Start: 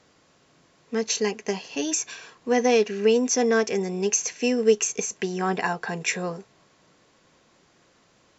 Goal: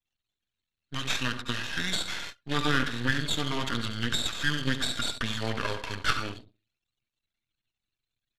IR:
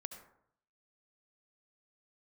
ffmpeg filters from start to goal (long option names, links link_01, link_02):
-filter_complex "[0:a]acrossover=split=2600[link_01][link_02];[link_02]acompressor=threshold=-43dB:ratio=4:attack=1:release=60[link_03];[link_01][link_03]amix=inputs=2:normalize=0,aexciter=amount=8.2:drive=6.6:freq=2200,aecho=1:1:5.5:0.36[link_04];[1:a]atrim=start_sample=2205,asetrate=52920,aresample=44100[link_05];[link_04][link_05]afir=irnorm=-1:irlink=0,anlmdn=1.58,aeval=exprs='max(val(0),0)':channel_layout=same,asetrate=26222,aresample=44100,atempo=1.68179"